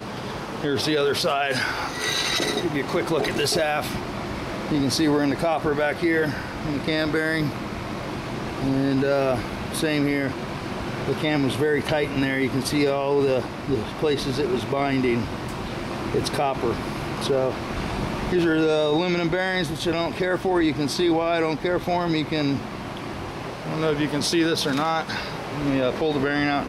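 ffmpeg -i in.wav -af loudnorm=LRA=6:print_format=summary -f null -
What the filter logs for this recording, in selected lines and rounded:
Input Integrated:    -23.9 LUFS
Input True Peak:      -7.9 dBTP
Input LRA:             1.9 LU
Input Threshold:     -33.9 LUFS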